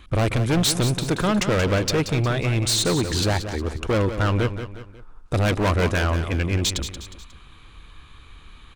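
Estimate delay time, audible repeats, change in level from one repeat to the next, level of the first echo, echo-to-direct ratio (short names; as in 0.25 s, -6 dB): 0.18 s, 3, -7.5 dB, -10.0 dB, -9.0 dB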